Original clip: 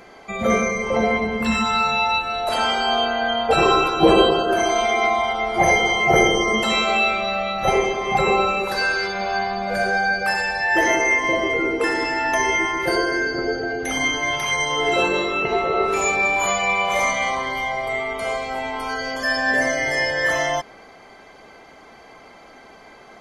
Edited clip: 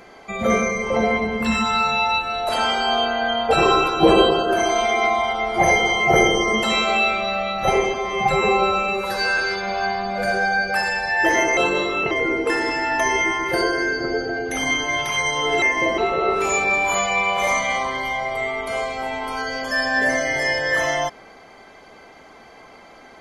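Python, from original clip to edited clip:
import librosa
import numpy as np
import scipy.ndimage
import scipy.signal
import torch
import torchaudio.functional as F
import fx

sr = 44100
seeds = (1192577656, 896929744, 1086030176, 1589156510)

y = fx.edit(x, sr, fx.stretch_span(start_s=7.94, length_s=0.96, factor=1.5),
    fx.swap(start_s=11.09, length_s=0.36, other_s=14.96, other_length_s=0.54), tone=tone)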